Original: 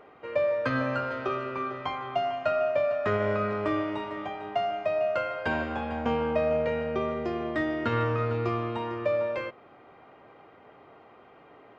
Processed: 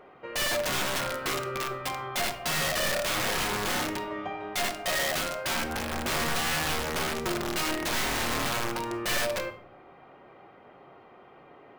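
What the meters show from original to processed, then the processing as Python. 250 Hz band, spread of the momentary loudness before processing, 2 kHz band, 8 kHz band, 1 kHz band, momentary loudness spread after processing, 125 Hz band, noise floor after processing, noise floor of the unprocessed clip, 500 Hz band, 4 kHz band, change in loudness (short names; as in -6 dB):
-3.5 dB, 6 LU, +4.5 dB, n/a, -0.5 dB, 6 LU, -4.5 dB, -53 dBFS, -54 dBFS, -6.5 dB, +14.0 dB, 0.0 dB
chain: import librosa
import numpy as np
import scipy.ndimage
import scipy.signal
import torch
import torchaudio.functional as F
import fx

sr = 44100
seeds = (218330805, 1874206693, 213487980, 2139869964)

y = (np.mod(10.0 ** (24.5 / 20.0) * x + 1.0, 2.0) - 1.0) / 10.0 ** (24.5 / 20.0)
y = fx.room_shoebox(y, sr, seeds[0], volume_m3=870.0, walls='furnished', distance_m=1.0)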